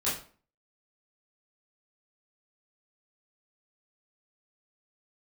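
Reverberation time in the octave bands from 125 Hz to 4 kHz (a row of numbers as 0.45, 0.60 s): 0.45, 0.50, 0.45, 0.40, 0.35, 0.35 s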